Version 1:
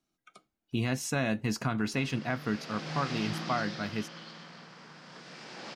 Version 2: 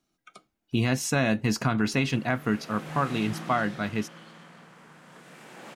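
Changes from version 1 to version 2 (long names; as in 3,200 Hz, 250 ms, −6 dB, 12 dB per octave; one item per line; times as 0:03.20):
speech +5.5 dB
background: remove low-pass with resonance 5,000 Hz, resonance Q 4.4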